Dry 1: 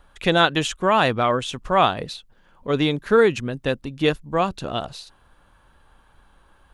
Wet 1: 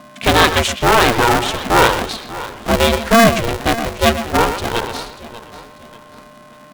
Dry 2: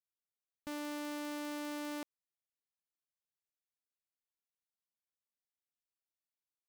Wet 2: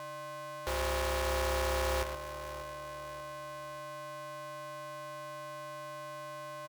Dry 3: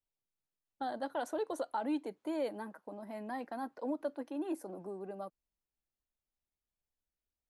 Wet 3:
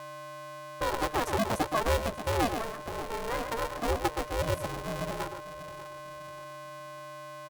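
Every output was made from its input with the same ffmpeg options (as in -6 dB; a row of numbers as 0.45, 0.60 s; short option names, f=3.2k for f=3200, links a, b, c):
-filter_complex "[0:a]acontrast=86,asplit=2[a][b];[b]adelay=120,highpass=300,lowpass=3.4k,asoftclip=type=hard:threshold=-11dB,volume=-7dB[c];[a][c]amix=inputs=2:normalize=0,aeval=exprs='val(0)+0.01*sin(2*PI*830*n/s)':c=same,asplit=2[d][e];[e]aecho=0:1:590|1180|1770:0.158|0.0618|0.0241[f];[d][f]amix=inputs=2:normalize=0,aeval=exprs='val(0)*sgn(sin(2*PI*230*n/s))':c=same"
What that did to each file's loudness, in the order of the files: +6.5, +4.5, +7.5 LU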